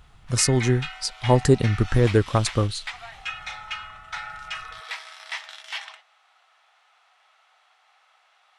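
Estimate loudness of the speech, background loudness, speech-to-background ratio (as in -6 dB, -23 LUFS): -22.0 LUFS, -35.0 LUFS, 13.0 dB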